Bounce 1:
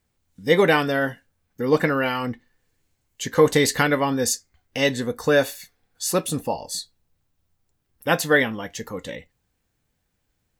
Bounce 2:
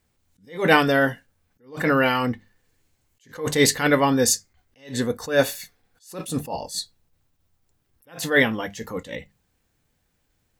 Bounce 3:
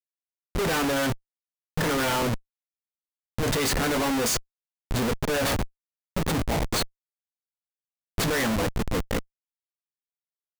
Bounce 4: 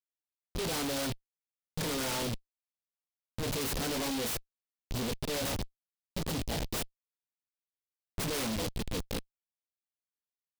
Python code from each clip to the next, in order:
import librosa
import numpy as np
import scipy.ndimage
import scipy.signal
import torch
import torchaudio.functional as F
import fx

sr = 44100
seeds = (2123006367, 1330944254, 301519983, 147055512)

y1 = fx.hum_notches(x, sr, base_hz=50, count=4)
y1 = fx.attack_slew(y1, sr, db_per_s=160.0)
y1 = y1 * librosa.db_to_amplitude(3.5)
y2 = fx.doubler(y1, sr, ms=18.0, db=-8.0)
y2 = fx.schmitt(y2, sr, flips_db=-28.0)
y3 = fx.noise_mod_delay(y2, sr, seeds[0], noise_hz=3400.0, depth_ms=0.15)
y3 = y3 * librosa.db_to_amplitude(-8.5)